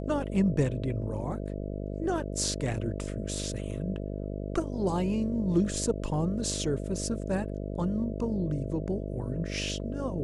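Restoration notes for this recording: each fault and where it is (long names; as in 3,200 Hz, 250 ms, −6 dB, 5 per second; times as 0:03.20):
mains buzz 50 Hz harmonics 13 −35 dBFS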